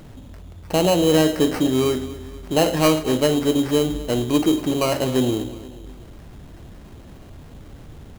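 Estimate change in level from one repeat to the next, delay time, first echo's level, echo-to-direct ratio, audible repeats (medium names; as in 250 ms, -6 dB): -6.0 dB, 238 ms, -16.0 dB, -15.0 dB, 3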